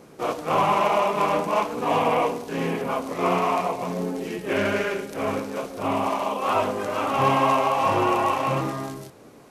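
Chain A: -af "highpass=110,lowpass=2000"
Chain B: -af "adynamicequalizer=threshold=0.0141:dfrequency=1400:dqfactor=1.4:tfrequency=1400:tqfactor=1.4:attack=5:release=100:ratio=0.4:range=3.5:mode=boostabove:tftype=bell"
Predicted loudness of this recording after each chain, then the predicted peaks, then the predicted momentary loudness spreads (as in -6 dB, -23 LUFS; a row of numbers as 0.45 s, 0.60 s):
-24.5 LUFS, -21.0 LUFS; -9.5 dBFS, -6.5 dBFS; 9 LU, 11 LU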